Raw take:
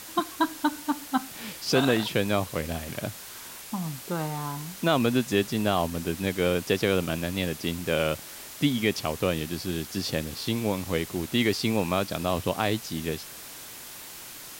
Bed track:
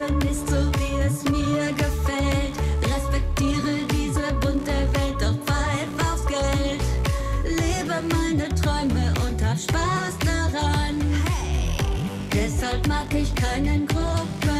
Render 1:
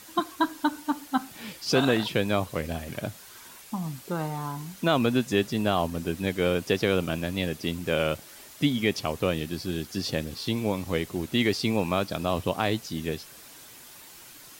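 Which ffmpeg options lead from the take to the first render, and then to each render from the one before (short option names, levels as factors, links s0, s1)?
-af "afftdn=nr=7:nf=-43"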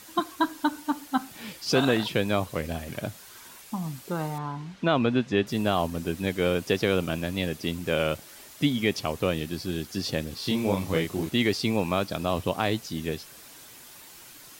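-filter_complex "[0:a]asettb=1/sr,asplit=3[s0][s1][s2];[s0]atrim=end=4.384[s3];[s1]atrim=start=4.38:end=5.47,asetpts=PTS-STARTPTS,afade=t=in:d=0.004:c=qsin,afade=t=out:st=1.086:d=0.004:c=qsin,lowpass=3600[s4];[s2]atrim=start=5.466[s5];[s3][s4]acrossfade=d=0.004:c1=hsin:c2=qsin[s6];[s6][s5]acrossfade=d=0.004:c1=qsin:c2=hsin,asettb=1/sr,asplit=3[s7][s8][s9];[s7]atrim=end=10.404[s10];[s8]atrim=start=10.4:end=11.3,asetpts=PTS-STARTPTS,afade=t=in:d=0.004:c=qsin,afade=t=out:st=0.896:d=0.004:c=qsin,asplit=2[s11][s12];[s12]adelay=31,volume=0.75[s13];[s11][s13]amix=inputs=2:normalize=0,atrim=end_sample=39690[s14];[s9]atrim=start=11.296[s15];[s10][s14]acrossfade=d=0.004:c1=hsin:c2=qsin[s16];[s16][s15]acrossfade=d=0.004:c1=qsin:c2=hsin"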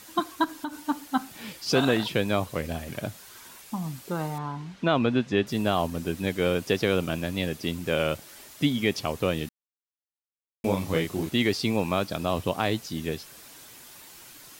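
-filter_complex "[0:a]asettb=1/sr,asplit=3[s0][s1][s2];[s0]atrim=end=0.444[s3];[s1]atrim=start=0.44:end=0.89,asetpts=PTS-STARTPTS,afade=t=in:d=0.004:c=qsin,afade=t=out:st=0.446:d=0.004:c=qsin,acompressor=threshold=0.0355:ratio=4:attack=3.2:release=140:knee=1:detection=peak[s4];[s2]atrim=start=0.886[s5];[s3][s4]acrossfade=d=0.004:c1=hsin:c2=qsin[s6];[s6][s5]acrossfade=d=0.004:c1=qsin:c2=hsin,asplit=3[s7][s8][s9];[s7]atrim=end=9.49,asetpts=PTS-STARTPTS,afade=t=out:st=9.486:d=0.004:c=hsin[s10];[s8]atrim=start=9.49:end=10.64,asetpts=PTS-STARTPTS,volume=0[s11];[s9]atrim=start=10.64,asetpts=PTS-STARTPTS,afade=t=in:d=0.004:c=hsin[s12];[s10][s11][s12]concat=n=3:v=0:a=1"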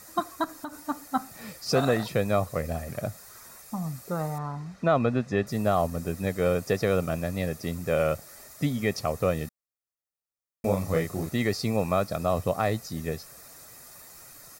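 -af "equalizer=f=3100:w=2.4:g=-15,aecho=1:1:1.6:0.46"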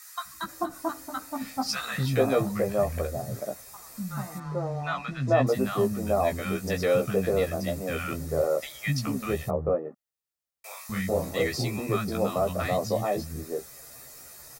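-filter_complex "[0:a]asplit=2[s0][s1];[s1]adelay=15,volume=0.668[s2];[s0][s2]amix=inputs=2:normalize=0,acrossover=split=230|1100[s3][s4][s5];[s3]adelay=250[s6];[s4]adelay=440[s7];[s6][s7][s5]amix=inputs=3:normalize=0"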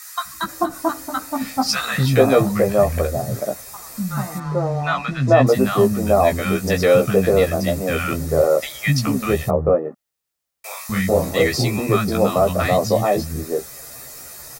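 -af "volume=2.99,alimiter=limit=0.794:level=0:latency=1"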